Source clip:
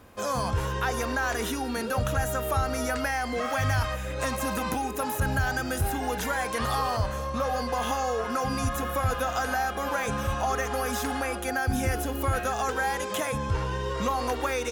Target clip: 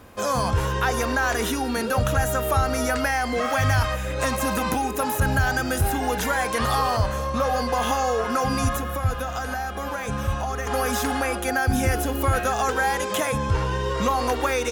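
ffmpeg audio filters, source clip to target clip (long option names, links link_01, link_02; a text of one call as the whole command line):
ffmpeg -i in.wav -filter_complex "[0:a]asettb=1/sr,asplit=3[link_01][link_02][link_03];[link_01]atrim=end=8.774[link_04];[link_02]atrim=start=8.77:end=10.67,asetpts=PTS-STARTPTS,afade=type=in:duration=0.004:curve=qsin,afade=type=out:start_time=1.896:duration=0.004:curve=qsin,acrossover=split=190[link_05][link_06];[link_06]acompressor=threshold=-37dB:ratio=2[link_07];[link_05][link_07]amix=inputs=2:normalize=0[link_08];[link_03]atrim=start=10.666[link_09];[link_04][link_08]acrossfade=duration=0.004:curve1=hsin:curve2=qsin[link_10];[link_10][link_09]acrossfade=duration=0.004:curve1=qsin:curve2=hsin,volume=5dB" out.wav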